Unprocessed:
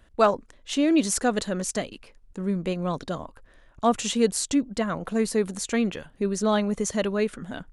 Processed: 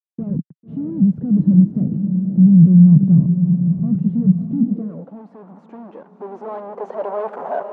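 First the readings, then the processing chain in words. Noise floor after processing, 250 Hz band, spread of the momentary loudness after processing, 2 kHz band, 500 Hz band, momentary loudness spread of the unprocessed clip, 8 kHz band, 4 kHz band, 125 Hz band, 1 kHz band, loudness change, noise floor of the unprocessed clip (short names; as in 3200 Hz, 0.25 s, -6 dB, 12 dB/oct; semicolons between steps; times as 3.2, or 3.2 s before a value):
-51 dBFS, +11.5 dB, 21 LU, under -10 dB, -4.0 dB, 11 LU, under -40 dB, under -30 dB, +21.0 dB, n/a, +11.0 dB, -57 dBFS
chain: HPF 51 Hz 24 dB/oct; fuzz box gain 44 dB, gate -46 dBFS; low-pass sweep 170 Hz -> 640 Hz, 4.79–7.47; diffused feedback echo 0.605 s, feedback 48%, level -7 dB; high-pass sweep 150 Hz -> 910 Hz, 4.45–5.24; gain -5.5 dB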